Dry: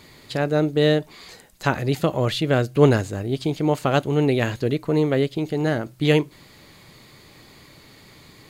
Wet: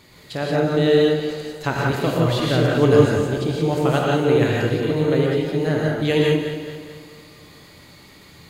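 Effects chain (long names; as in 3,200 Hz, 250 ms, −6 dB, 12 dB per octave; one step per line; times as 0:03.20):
feedback delay that plays each chunk backwards 109 ms, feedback 69%, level −8.5 dB
reverb whose tail is shaped and stops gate 200 ms rising, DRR −2 dB
level −3 dB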